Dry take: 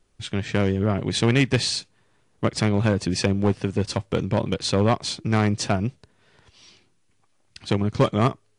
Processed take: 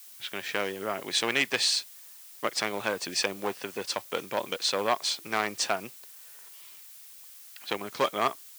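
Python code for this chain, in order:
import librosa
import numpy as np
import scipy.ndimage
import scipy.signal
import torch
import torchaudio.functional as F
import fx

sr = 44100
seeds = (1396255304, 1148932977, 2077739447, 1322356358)

y = fx.env_lowpass(x, sr, base_hz=2600.0, full_db=-19.0)
y = fx.dmg_noise_colour(y, sr, seeds[0], colour='blue', level_db=-49.0)
y = scipy.signal.sosfilt(scipy.signal.bessel(2, 770.0, 'highpass', norm='mag', fs=sr, output='sos'), y)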